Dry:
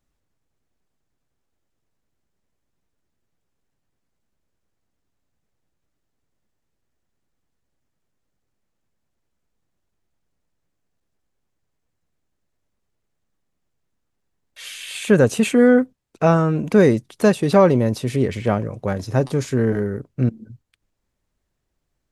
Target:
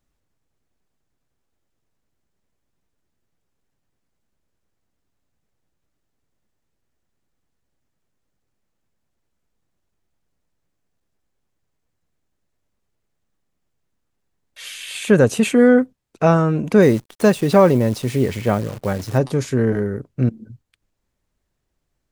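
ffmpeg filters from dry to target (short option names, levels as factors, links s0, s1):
-filter_complex "[0:a]asettb=1/sr,asplit=3[s0][s1][s2];[s0]atrim=end=16.824[s3];[s1]atrim=start=16.82:end=19.18,asetpts=PTS-STARTPTS,afade=t=in:d=0.004:c=qsin,afade=t=out:st=2.356:d=0.004:c=qsin,acrusher=bits=7:dc=4:mix=0:aa=0.000001[s4];[s2]atrim=start=19.176[s5];[s3][s4]acrossfade=d=0.004:c1=hsin:c2=qsin[s6];[s6][s5]acrossfade=d=0.004:c1=qsin:c2=hsin,volume=1.12"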